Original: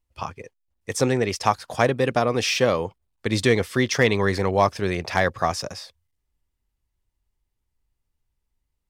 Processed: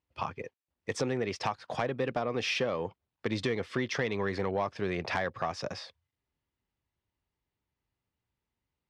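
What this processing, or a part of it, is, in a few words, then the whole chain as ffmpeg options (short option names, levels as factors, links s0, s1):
AM radio: -af "highpass=110,lowpass=3800,acompressor=threshold=0.0447:ratio=5,asoftclip=type=tanh:threshold=0.119"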